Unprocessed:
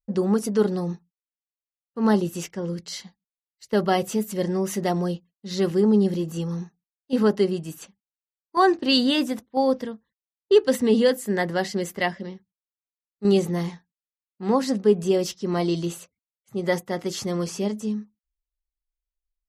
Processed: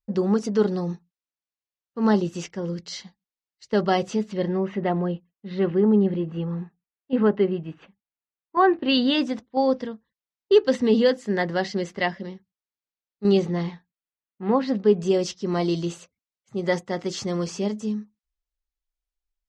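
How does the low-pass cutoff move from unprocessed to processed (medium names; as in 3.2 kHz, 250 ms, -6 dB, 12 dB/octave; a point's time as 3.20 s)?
low-pass 24 dB/octave
4.03 s 6.5 kHz
4.69 s 2.8 kHz
8.74 s 2.8 kHz
9.24 s 5.8 kHz
13.28 s 5.8 kHz
14.43 s 2.8 kHz
15.09 s 7.2 kHz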